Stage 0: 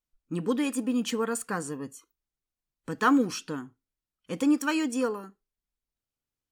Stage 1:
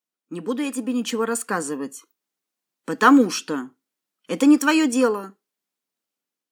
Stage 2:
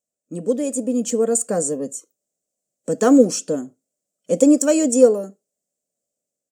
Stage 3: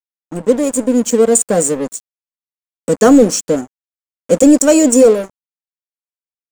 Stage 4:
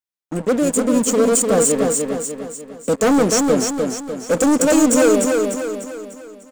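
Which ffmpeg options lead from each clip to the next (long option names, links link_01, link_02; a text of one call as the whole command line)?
ffmpeg -i in.wav -af "highpass=frequency=200:width=0.5412,highpass=frequency=200:width=1.3066,dynaudnorm=framelen=530:gausssize=5:maxgain=8dB,volume=1.5dB" out.wav
ffmpeg -i in.wav -af "firequalizer=gain_entry='entry(110,0);entry(330,-9);entry(590,6);entry(910,-21);entry(3900,-17);entry(7400,4);entry(11000,-11)':delay=0.05:min_phase=1,volume=8dB" out.wav
ffmpeg -i in.wav -af "aeval=exprs='sgn(val(0))*max(abs(val(0))-0.0178,0)':channel_layout=same,apsyclip=10.5dB,volume=-1.5dB" out.wav
ffmpeg -i in.wav -filter_complex "[0:a]asoftclip=type=tanh:threshold=-13.5dB,asplit=2[link_01][link_02];[link_02]aecho=0:1:298|596|894|1192|1490|1788:0.631|0.297|0.139|0.0655|0.0308|0.0145[link_03];[link_01][link_03]amix=inputs=2:normalize=0,volume=1.5dB" out.wav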